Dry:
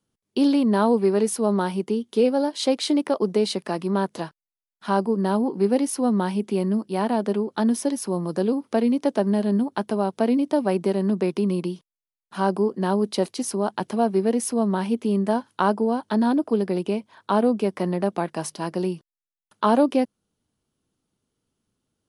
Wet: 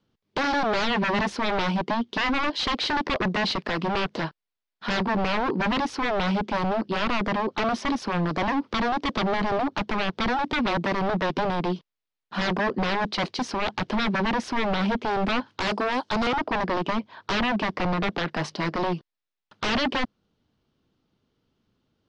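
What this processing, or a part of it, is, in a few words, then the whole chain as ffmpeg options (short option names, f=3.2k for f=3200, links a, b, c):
synthesiser wavefolder: -filter_complex "[0:a]asettb=1/sr,asplit=3[a][b][c];[a]atrim=end=15.674[d];[b]atrim=start=15.67:end=16.27,asetpts=PTS-STARTPTS,afade=t=in:d=0.004:c=qsin,afade=t=out:st=0.596:d=0.004:c=qsin,bass=f=250:g=-9,treble=f=4k:g=13[e];[c]atrim=start=16.266[f];[d][e]acrossfade=d=0.004:c1=hsin:c2=qsin[g];[g][f]acrossfade=d=0.004:c1=qsin:c2=hsin,aeval=exprs='0.0562*(abs(mod(val(0)/0.0562+3,4)-2)-1)':c=same,lowpass=f=4.8k:w=0.5412,lowpass=f=4.8k:w=1.3066,volume=6dB"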